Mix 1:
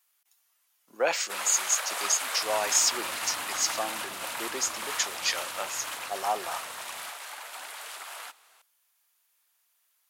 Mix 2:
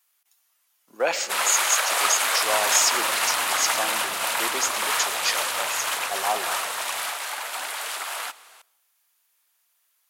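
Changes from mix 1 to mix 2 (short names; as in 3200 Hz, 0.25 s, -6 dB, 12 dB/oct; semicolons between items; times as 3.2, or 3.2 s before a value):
first sound +9.0 dB; reverb: on, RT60 0.65 s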